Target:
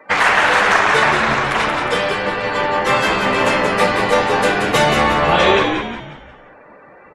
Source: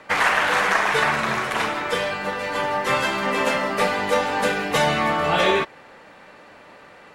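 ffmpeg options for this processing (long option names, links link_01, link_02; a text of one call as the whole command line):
ffmpeg -i in.wav -filter_complex "[0:a]afftdn=noise_reduction=26:noise_floor=-44,asplit=6[link_01][link_02][link_03][link_04][link_05][link_06];[link_02]adelay=179,afreqshift=-82,volume=-5.5dB[link_07];[link_03]adelay=358,afreqshift=-164,volume=-13.2dB[link_08];[link_04]adelay=537,afreqshift=-246,volume=-21dB[link_09];[link_05]adelay=716,afreqshift=-328,volume=-28.7dB[link_10];[link_06]adelay=895,afreqshift=-410,volume=-36.5dB[link_11];[link_01][link_07][link_08][link_09][link_10][link_11]amix=inputs=6:normalize=0,volume=5dB" out.wav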